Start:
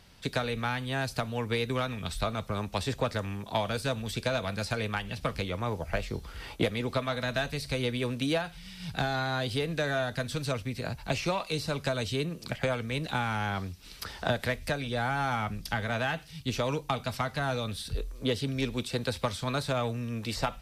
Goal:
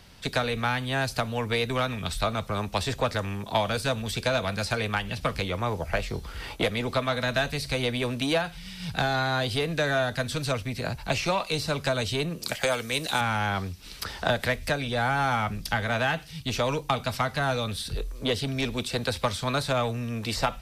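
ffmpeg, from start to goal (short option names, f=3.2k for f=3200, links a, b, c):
-filter_complex "[0:a]asettb=1/sr,asplit=3[a][b][c];[a]atrim=end=12.434[d];[b]atrim=start=12.43:end=13.21,asetpts=PTS-STARTPTS,afade=t=in:d=0.004:c=qsin,afade=t=out:st=0.776:d=0.004:c=qsin,bass=f=250:g=-9,treble=f=4k:g=11[e];[c]atrim=start=13.206[f];[d][e]acrossfade=d=0.004:c1=hsin:c2=qsin[g];[g][f]acrossfade=d=0.004:c1=qsin:c2=hsin,acrossover=split=510|4200[h][i][j];[h]asoftclip=type=tanh:threshold=-30.5dB[k];[k][i][j]amix=inputs=3:normalize=0,volume=5dB"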